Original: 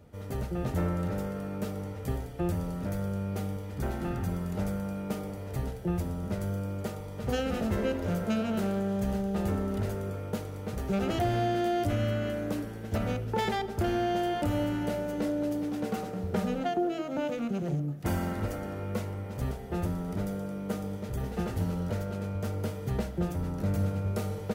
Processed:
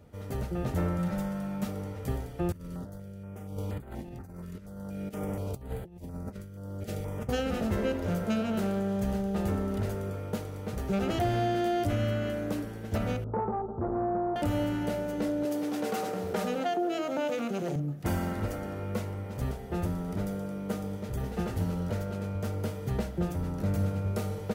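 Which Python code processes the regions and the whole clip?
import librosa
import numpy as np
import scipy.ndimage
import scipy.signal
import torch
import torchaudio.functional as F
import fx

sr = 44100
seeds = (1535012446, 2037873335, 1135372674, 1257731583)

y = fx.chain(x, sr, fx.peak_eq(hz=410.0, db=-11.0, octaves=0.53),
    fx.comb(ms=5.5, depth=0.65), at=(0.98, 1.68))
y = fx.chain(y, sr, fx.over_compress(threshold_db=-37.0, ratio=-0.5),
    fx.filter_held_notch(hz=4.2, low_hz=780.0, high_hz=5600.0), at=(2.52, 7.29))
y = fx.chain(y, sr, fx.steep_lowpass(hz=1300.0, slope=72),
    fx.transformer_sat(knee_hz=330.0), at=(13.24, 14.36))
y = fx.chain(y, sr, fx.highpass(hz=88.0, slope=12),
    fx.bass_treble(bass_db=-11, treble_db=2),
    fx.env_flatten(amount_pct=50), at=(15.45, 17.76))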